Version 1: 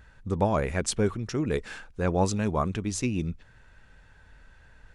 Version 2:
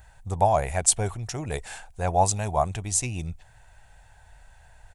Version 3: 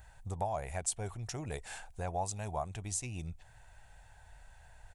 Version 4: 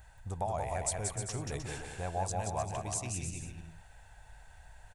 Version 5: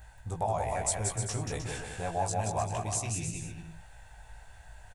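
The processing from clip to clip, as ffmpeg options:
-af "firequalizer=gain_entry='entry(110,0);entry(220,-13);entry(500,-6);entry(720,10);entry(1200,-6);entry(1900,-2);entry(5300,1);entry(7900,11)':delay=0.05:min_phase=1,volume=2dB"
-af "acompressor=threshold=-36dB:ratio=2,volume=-4dB"
-af "aecho=1:1:180|306|394.2|455.9|499.2:0.631|0.398|0.251|0.158|0.1"
-filter_complex "[0:a]asplit=2[a][b];[b]adelay=18,volume=-3.5dB[c];[a][c]amix=inputs=2:normalize=0,volume=2dB"

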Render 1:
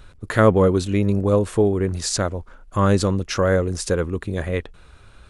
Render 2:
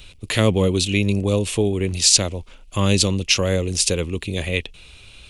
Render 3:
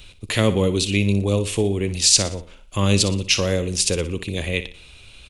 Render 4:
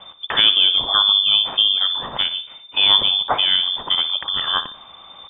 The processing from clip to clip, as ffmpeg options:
-filter_complex "[0:a]highshelf=f=2k:t=q:w=3:g=9.5,acrossover=split=280|3000[a][b][c];[b]acompressor=threshold=-25dB:ratio=1.5[d];[a][d][c]amix=inputs=3:normalize=0"
-af "aecho=1:1:60|120|180|240:0.224|0.0873|0.0341|0.0133,volume=-1dB"
-af "lowpass=f=3.1k:t=q:w=0.5098,lowpass=f=3.1k:t=q:w=0.6013,lowpass=f=3.1k:t=q:w=0.9,lowpass=f=3.1k:t=q:w=2.563,afreqshift=-3600,volume=3.5dB"

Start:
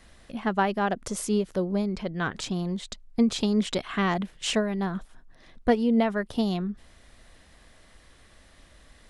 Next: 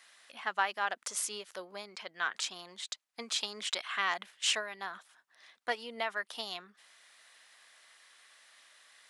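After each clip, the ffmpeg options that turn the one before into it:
-af "highpass=1.2k"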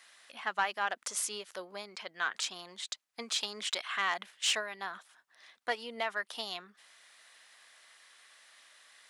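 -af "asoftclip=type=tanh:threshold=-19dB,volume=1dB"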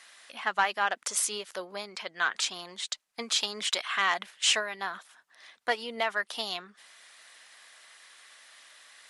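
-af "volume=5.5dB" -ar 48000 -c:a libmp3lame -b:a 56k

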